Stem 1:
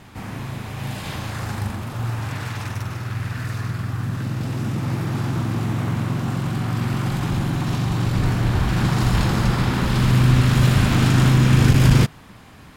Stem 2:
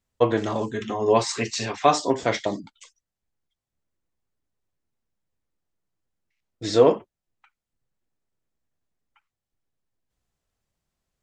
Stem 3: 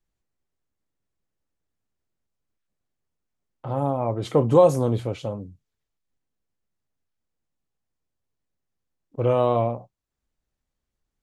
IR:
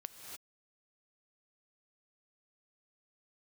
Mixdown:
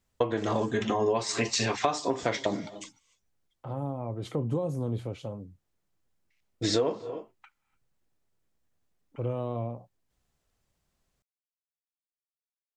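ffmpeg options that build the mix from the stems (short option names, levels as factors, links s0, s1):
-filter_complex "[1:a]volume=1.33,asplit=2[s0][s1];[s1]volume=0.237[s2];[2:a]acrossover=split=340[s3][s4];[s4]acompressor=threshold=0.0282:ratio=3[s5];[s3][s5]amix=inputs=2:normalize=0,volume=0.473[s6];[3:a]atrim=start_sample=2205[s7];[s2][s7]afir=irnorm=-1:irlink=0[s8];[s0][s6][s8]amix=inputs=3:normalize=0,acompressor=threshold=0.0708:ratio=12"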